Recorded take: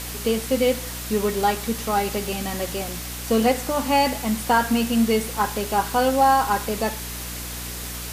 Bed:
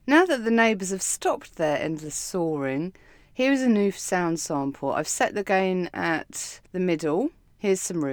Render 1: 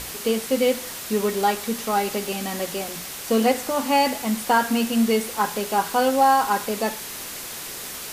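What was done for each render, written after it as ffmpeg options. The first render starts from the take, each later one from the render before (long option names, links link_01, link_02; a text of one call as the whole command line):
ffmpeg -i in.wav -af "bandreject=frequency=60:width_type=h:width=6,bandreject=frequency=120:width_type=h:width=6,bandreject=frequency=180:width_type=h:width=6,bandreject=frequency=240:width_type=h:width=6,bandreject=frequency=300:width_type=h:width=6" out.wav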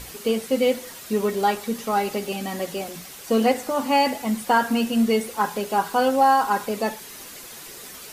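ffmpeg -i in.wav -af "afftdn=noise_reduction=8:noise_floor=-35" out.wav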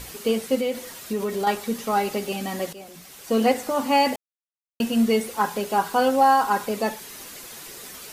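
ffmpeg -i in.wav -filter_complex "[0:a]asettb=1/sr,asplit=3[link_01][link_02][link_03];[link_01]atrim=end=0.554[link_04];[link_02]atrim=start=0.55:end=1.47,asetpts=PTS-STARTPTS,afade=type=in:duration=0.004:curve=qsin,afade=type=out:start_time=0.916:duration=0.004:curve=qsin,acompressor=threshold=-23dB:ratio=2.5:attack=3.2:release=140:knee=1:detection=peak[link_05];[link_03]atrim=start=1.466[link_06];[link_04][link_05]acrossfade=duration=0.004:curve1=hsin:curve2=qsin[link_07];[link_07][link_06]acrossfade=duration=0.004:curve1=qsin:curve2=hsin,asplit=4[link_08][link_09][link_10][link_11];[link_08]atrim=end=2.73,asetpts=PTS-STARTPTS,afade=type=out:start_time=2.726:duration=0.004:curve=hsin:silence=0.199526[link_12];[link_09]atrim=start=2.73:end=4.16,asetpts=PTS-STARTPTS,afade=type=in:duration=0.76:silence=0.199526,afade=type=out:start_time=1.426:duration=0.004:curve=hsin[link_13];[link_10]atrim=start=4.16:end=4.8,asetpts=PTS-STARTPTS,volume=0[link_14];[link_11]atrim=start=4.8,asetpts=PTS-STARTPTS,afade=type=in:duration=0.004:curve=hsin[link_15];[link_12][link_13][link_14][link_15]concat=n=4:v=0:a=1" out.wav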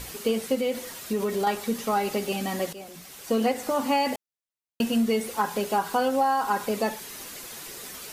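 ffmpeg -i in.wav -af "acompressor=threshold=-20dB:ratio=5" out.wav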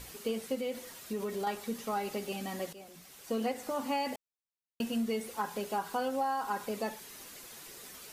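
ffmpeg -i in.wav -af "volume=-9dB" out.wav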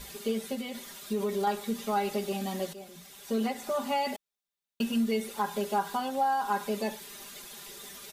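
ffmpeg -i in.wav -af "equalizer=frequency=3600:width=6.5:gain=6.5,aecho=1:1:5:0.99" out.wav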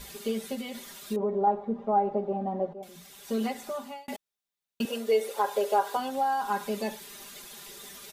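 ffmpeg -i in.wav -filter_complex "[0:a]asettb=1/sr,asplit=3[link_01][link_02][link_03];[link_01]atrim=end=1.164[link_04];[link_02]atrim=start=1.16:end=2.83,asetpts=PTS-STARTPTS,afade=type=in:duration=0.004:curve=qsin,afade=type=out:start_time=1.666:duration=0.004:curve=qsin,lowpass=frequency=750:width_type=q:width=2.1[link_05];[link_03]atrim=start=2.826[link_06];[link_04][link_05]acrossfade=duration=0.004:curve1=hsin:curve2=qsin[link_07];[link_07][link_06]acrossfade=duration=0.004:curve1=qsin:curve2=hsin,asettb=1/sr,asplit=3[link_08][link_09][link_10];[link_08]atrim=end=4.854[link_11];[link_09]atrim=start=4.85:end=5.97,asetpts=PTS-STARTPTS,afade=type=in:duration=0.004:curve=qsin,afade=type=out:start_time=1.116:duration=0.004:curve=qsin,highpass=frequency=500:width_type=q:width=4.1[link_12];[link_10]atrim=start=5.966[link_13];[link_11][link_12]acrossfade=duration=0.004:curve1=hsin:curve2=qsin[link_14];[link_14][link_13]acrossfade=duration=0.004:curve1=qsin:curve2=hsin,asplit=2[link_15][link_16];[link_15]atrim=end=4.08,asetpts=PTS-STARTPTS,afade=type=out:start_time=3.53:duration=0.55[link_17];[link_16]atrim=start=4.08,asetpts=PTS-STARTPTS,afade=type=in:duration=0.004:curve=hsin[link_18];[link_17][link_18]concat=n=2:v=0:a=1" out.wav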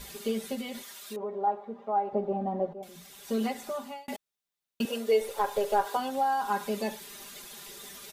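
ffmpeg -i in.wav -filter_complex "[0:a]asettb=1/sr,asplit=3[link_01][link_02][link_03];[link_01]atrim=end=0.824[link_04];[link_02]atrim=start=0.82:end=2.13,asetpts=PTS-STARTPTS,afade=type=in:duration=0.004:curve=qsin,afade=type=out:start_time=1.306:duration=0.004:curve=qsin,highpass=frequency=780:poles=1[link_05];[link_03]atrim=start=2.126[link_06];[link_04][link_05]acrossfade=duration=0.004:curve1=hsin:curve2=qsin[link_07];[link_07][link_06]acrossfade=duration=0.004:curve1=qsin:curve2=hsin,asettb=1/sr,asplit=3[link_08][link_09][link_10];[link_08]atrim=end=5.214[link_11];[link_09]atrim=start=5.21:end=5.86,asetpts=PTS-STARTPTS,afade=type=in:duration=0.004:curve=qsin,afade=type=out:start_time=0.646:duration=0.004:curve=qsin,aeval=exprs='if(lt(val(0),0),0.708*val(0),val(0))':channel_layout=same[link_12];[link_10]atrim=start=5.856[link_13];[link_11][link_12]acrossfade=duration=0.004:curve1=hsin:curve2=qsin[link_14];[link_14][link_13]acrossfade=duration=0.004:curve1=qsin:curve2=hsin" out.wav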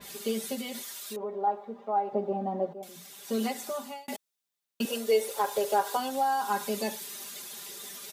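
ffmpeg -i in.wav -af "highpass=150,adynamicequalizer=threshold=0.00316:dfrequency=3800:dqfactor=0.7:tfrequency=3800:tqfactor=0.7:attack=5:release=100:ratio=0.375:range=3.5:mode=boostabove:tftype=highshelf" out.wav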